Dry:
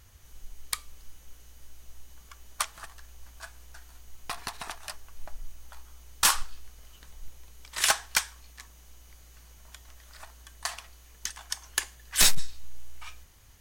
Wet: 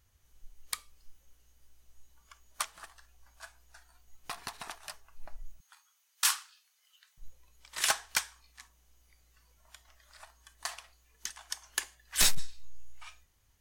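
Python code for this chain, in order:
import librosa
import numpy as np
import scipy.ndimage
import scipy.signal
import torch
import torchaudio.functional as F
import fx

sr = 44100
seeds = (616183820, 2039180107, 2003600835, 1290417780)

y = fx.highpass(x, sr, hz=1300.0, slope=12, at=(5.6, 7.18))
y = fx.noise_reduce_blind(y, sr, reduce_db=9)
y = y * librosa.db_to_amplitude(-4.5)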